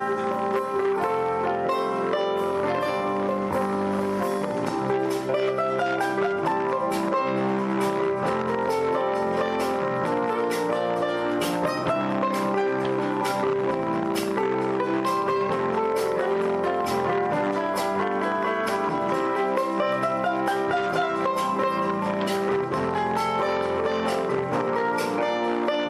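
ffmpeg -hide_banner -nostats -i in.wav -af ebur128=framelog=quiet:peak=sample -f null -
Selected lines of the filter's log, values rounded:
Integrated loudness:
  I:         -24.8 LUFS
  Threshold: -34.8 LUFS
Loudness range:
  LRA:         0.7 LU
  Threshold: -44.8 LUFS
  LRA low:   -25.2 LUFS
  LRA high:  -24.5 LUFS
Sample peak:
  Peak:      -10.2 dBFS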